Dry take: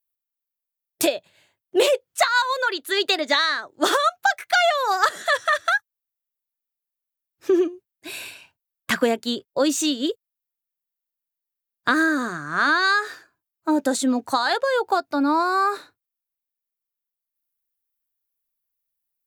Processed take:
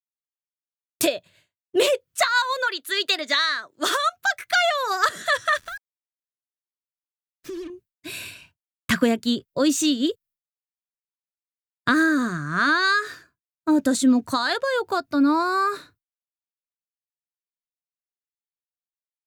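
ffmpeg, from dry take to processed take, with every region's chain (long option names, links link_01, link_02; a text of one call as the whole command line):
ffmpeg -i in.wav -filter_complex "[0:a]asettb=1/sr,asplit=3[link_01][link_02][link_03];[link_01]atrim=end=2.674[link_04];[link_02]atrim=start=2.67:end=4.13,asetpts=PTS-STARTPTS,afade=type=in:duration=0.004:curve=qsin,afade=type=out:start_time=1.456:duration=0.004:curve=qsin,highpass=150,lowshelf=frequency=460:gain=-10[link_05];[link_03]atrim=start=4.126[link_06];[link_04][link_05]acrossfade=duration=0.004:curve1=hsin:curve2=qsin[link_07];[link_07][link_06]acrossfade=duration=0.004:curve1=qsin:curve2=hsin,asettb=1/sr,asplit=3[link_08][link_09][link_10];[link_08]atrim=end=5.574[link_11];[link_09]atrim=start=5.57:end=7.7,asetpts=PTS-STARTPTS,afade=type=in:duration=0.004:curve=qsin,afade=type=out:start_time=2.126:duration=0.004:curve=qsin,acompressor=threshold=-34dB:ratio=4:attack=3.2:release=140:knee=1:detection=peak,acrusher=bits=6:mix=0:aa=0.5[link_12];[link_10]atrim=start=7.696[link_13];[link_11][link_12]acrossfade=duration=0.004:curve1=hsin:curve2=qsin[link_14];[link_14][link_13]acrossfade=duration=0.004:curve1=qsin:curve2=hsin,bandreject=frequency=830:width=5.1,agate=range=-33dB:threshold=-50dB:ratio=3:detection=peak,asubboost=boost=3.5:cutoff=230" out.wav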